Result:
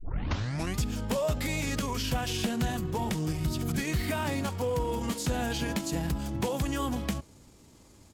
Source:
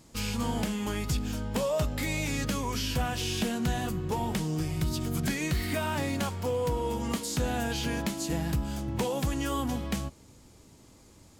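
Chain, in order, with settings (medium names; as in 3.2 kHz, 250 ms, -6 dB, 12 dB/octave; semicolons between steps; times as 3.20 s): tape start-up on the opening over 1.10 s; tempo 1.4×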